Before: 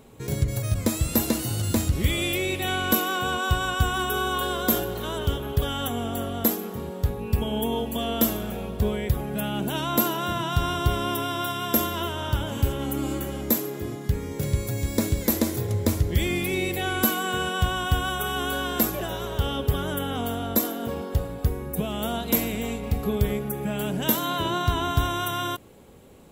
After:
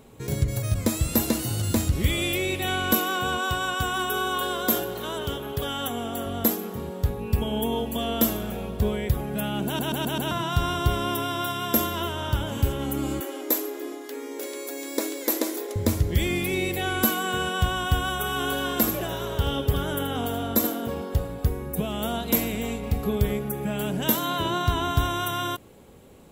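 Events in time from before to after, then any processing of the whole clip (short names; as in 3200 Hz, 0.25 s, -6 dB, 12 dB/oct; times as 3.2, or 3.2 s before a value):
3.46–6.26 HPF 200 Hz 6 dB/oct
9.66 stutter in place 0.13 s, 5 plays
13.2–15.76 brick-wall FIR high-pass 250 Hz
18.24–20.81 echo 79 ms -9 dB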